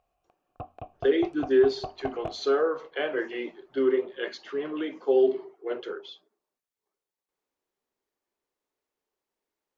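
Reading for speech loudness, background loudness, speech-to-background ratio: -27.5 LUFS, -41.0 LUFS, 13.5 dB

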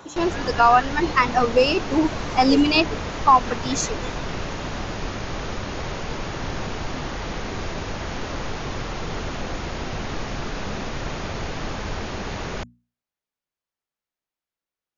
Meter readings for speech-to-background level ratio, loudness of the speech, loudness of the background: 10.5 dB, -20.0 LUFS, -30.5 LUFS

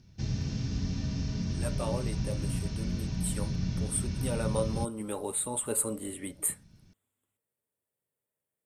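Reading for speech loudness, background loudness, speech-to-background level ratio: -34.5 LUFS, -34.0 LUFS, -0.5 dB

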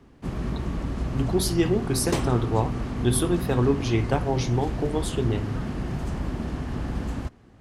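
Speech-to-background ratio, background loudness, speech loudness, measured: 4.5 dB, -30.5 LUFS, -26.0 LUFS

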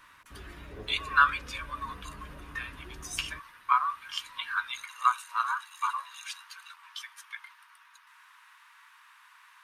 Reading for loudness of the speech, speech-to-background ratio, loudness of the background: -31.0 LUFS, 18.0 dB, -49.0 LUFS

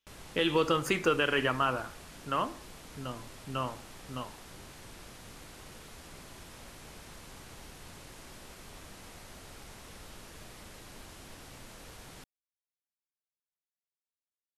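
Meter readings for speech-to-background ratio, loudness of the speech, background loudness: 18.5 dB, -30.5 LUFS, -49.0 LUFS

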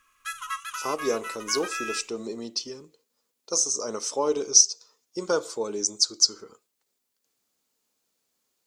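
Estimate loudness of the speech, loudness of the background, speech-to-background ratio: -24.5 LUFS, -34.5 LUFS, 10.0 dB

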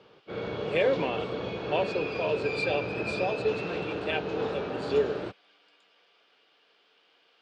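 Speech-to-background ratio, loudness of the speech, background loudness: 2.0 dB, -31.5 LUFS, -33.5 LUFS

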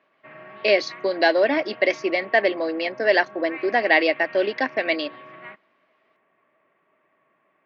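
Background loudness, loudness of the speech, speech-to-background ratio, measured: -41.5 LUFS, -21.5 LUFS, 20.0 dB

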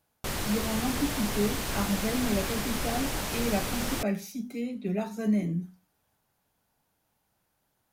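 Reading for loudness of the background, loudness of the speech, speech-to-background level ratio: -32.0 LUFS, -32.0 LUFS, 0.0 dB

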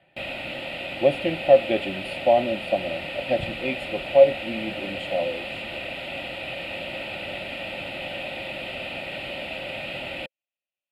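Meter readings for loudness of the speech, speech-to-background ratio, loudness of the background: -23.5 LUFS, 8.5 dB, -32.0 LUFS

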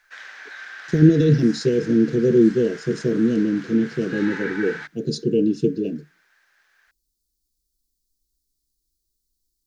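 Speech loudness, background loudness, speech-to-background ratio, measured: -20.0 LUFS, -36.5 LUFS, 16.5 dB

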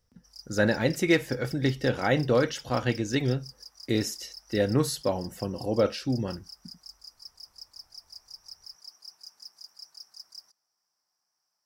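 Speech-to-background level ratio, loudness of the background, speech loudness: 18.0 dB, -45.5 LUFS, -27.5 LUFS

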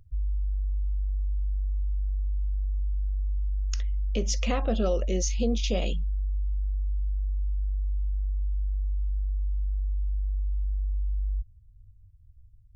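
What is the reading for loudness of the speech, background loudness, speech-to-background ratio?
-30.0 LUFS, -31.5 LUFS, 1.5 dB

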